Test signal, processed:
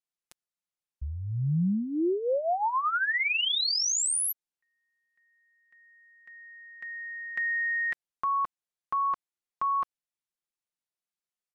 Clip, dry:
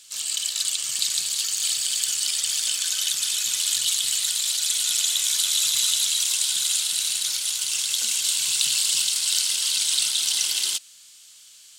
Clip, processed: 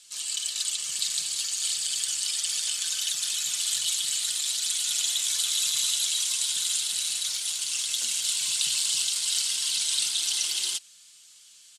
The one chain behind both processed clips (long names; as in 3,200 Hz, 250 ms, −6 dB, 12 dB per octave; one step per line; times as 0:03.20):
low-pass filter 12,000 Hz 24 dB per octave
comb filter 5.7 ms, depth 54%
level −5 dB